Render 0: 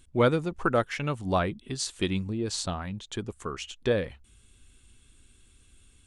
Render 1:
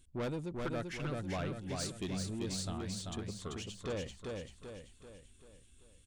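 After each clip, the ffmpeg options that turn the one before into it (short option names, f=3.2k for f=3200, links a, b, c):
-filter_complex "[0:a]equalizer=f=1.2k:w=0.57:g=-5.5,asoftclip=type=tanh:threshold=-27.5dB,asplit=2[a][b];[b]aecho=0:1:388|776|1164|1552|1940|2328:0.668|0.314|0.148|0.0694|0.0326|0.0153[c];[a][c]amix=inputs=2:normalize=0,volume=-6dB"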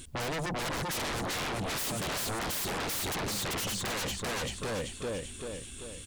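-af "lowshelf=f=84:g=-12,acompressor=threshold=-39dB:ratio=6,aeval=exprs='0.0224*sin(PI/2*6.31*val(0)/0.0224)':c=same,volume=2.5dB"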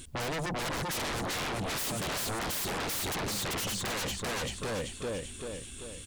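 -af anull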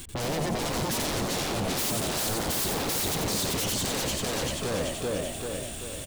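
-filter_complex "[0:a]acrossover=split=430|790|3100[a][b][c][d];[c]alimiter=level_in=15.5dB:limit=-24dB:level=0:latency=1,volume=-15.5dB[e];[d]acrusher=bits=7:mix=0:aa=0.000001[f];[a][b][e][f]amix=inputs=4:normalize=0,asplit=7[g][h][i][j][k][l][m];[h]adelay=89,afreqshift=72,volume=-4.5dB[n];[i]adelay=178,afreqshift=144,volume=-11.4dB[o];[j]adelay=267,afreqshift=216,volume=-18.4dB[p];[k]adelay=356,afreqshift=288,volume=-25.3dB[q];[l]adelay=445,afreqshift=360,volume=-32.2dB[r];[m]adelay=534,afreqshift=432,volume=-39.2dB[s];[g][n][o][p][q][r][s]amix=inputs=7:normalize=0,volume=4.5dB"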